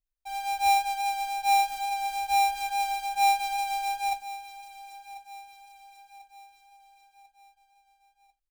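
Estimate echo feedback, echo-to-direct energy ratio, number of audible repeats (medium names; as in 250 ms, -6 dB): 47%, -15.0 dB, 3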